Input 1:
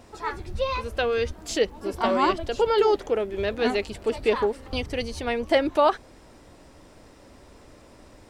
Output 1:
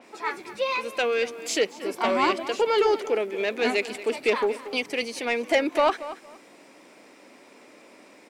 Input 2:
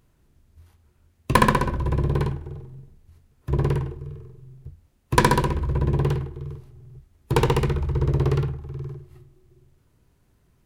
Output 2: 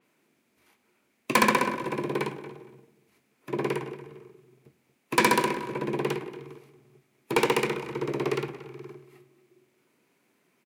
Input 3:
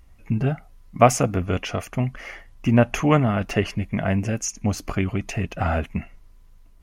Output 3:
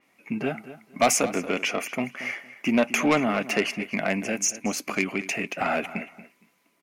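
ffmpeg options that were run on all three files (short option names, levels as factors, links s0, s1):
-filter_complex "[0:a]highpass=f=220:w=0.5412,highpass=f=220:w=1.3066,equalizer=f=2300:t=o:w=0.42:g=10,asoftclip=type=tanh:threshold=0.237,asplit=2[s0][s1];[s1]adelay=231,lowpass=f=4000:p=1,volume=0.188,asplit=2[s2][s3];[s3]adelay=231,lowpass=f=4000:p=1,volume=0.22[s4];[s0][s2][s4]amix=inputs=3:normalize=0,adynamicequalizer=threshold=0.00794:dfrequency=5000:dqfactor=0.7:tfrequency=5000:tqfactor=0.7:attack=5:release=100:ratio=0.375:range=2.5:mode=boostabove:tftype=highshelf"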